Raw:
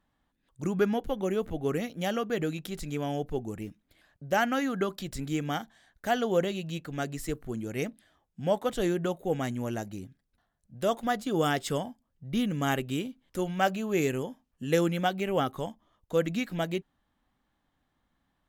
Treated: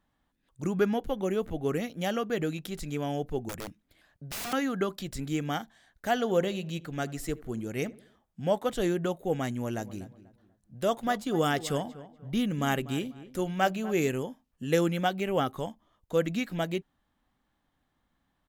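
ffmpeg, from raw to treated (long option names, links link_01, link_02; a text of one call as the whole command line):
ffmpeg -i in.wav -filter_complex "[0:a]asettb=1/sr,asplit=3[link_01][link_02][link_03];[link_01]atrim=end=3.494[link_04];[link_02]atrim=start=3.49:end=4.53,asetpts=PTS-STARTPTS,afade=type=in:duration=0.004:curve=qsin,afade=type=out:start_time=1.036:duration=0.004:curve=qsin,aeval=exprs='(mod(37.6*val(0)+1,2)-1)/37.6':channel_layout=same[link_05];[link_03]atrim=start=4.526[link_06];[link_04][link_05]acrossfade=duration=0.004:curve1=hsin:curve2=qsin[link_07];[link_07][link_06]acrossfade=duration=0.004:curve1=qsin:curve2=hsin,asettb=1/sr,asplit=3[link_08][link_09][link_10];[link_08]atrim=end=6.124[link_11];[link_09]atrim=start=6.12:end=8.4,asetpts=PTS-STARTPTS,afade=type=in:duration=0.004:curve=qsin,afade=type=out:start_time=2.276:duration=0.004:curve=qsin,asplit=2[link_12][link_13];[link_13]adelay=79,lowpass=frequency=1700:poles=1,volume=-19.5dB,asplit=2[link_14][link_15];[link_15]adelay=79,lowpass=frequency=1700:poles=1,volume=0.51,asplit=2[link_16][link_17];[link_17]adelay=79,lowpass=frequency=1700:poles=1,volume=0.51,asplit=2[link_18][link_19];[link_19]adelay=79,lowpass=frequency=1700:poles=1,volume=0.51[link_20];[link_12][link_14][link_16][link_18][link_20]amix=inputs=5:normalize=0,atrim=end_sample=100548[link_21];[link_10]atrim=start=8.396[link_22];[link_11][link_21]acrossfade=duration=0.004:curve1=hsin:curve2=qsin[link_23];[link_23][link_22]acrossfade=duration=0.004:curve1=qsin:curve2=hsin,asplit=3[link_24][link_25][link_26];[link_24]afade=type=out:start_time=9.77:duration=0.02[link_27];[link_25]asplit=2[link_28][link_29];[link_29]adelay=244,lowpass=frequency=2000:poles=1,volume=-16dB,asplit=2[link_30][link_31];[link_31]adelay=244,lowpass=frequency=2000:poles=1,volume=0.32,asplit=2[link_32][link_33];[link_33]adelay=244,lowpass=frequency=2000:poles=1,volume=0.32[link_34];[link_28][link_30][link_32][link_34]amix=inputs=4:normalize=0,afade=type=in:start_time=9.77:duration=0.02,afade=type=out:start_time=14.09:duration=0.02[link_35];[link_26]afade=type=in:start_time=14.09:duration=0.02[link_36];[link_27][link_35][link_36]amix=inputs=3:normalize=0" out.wav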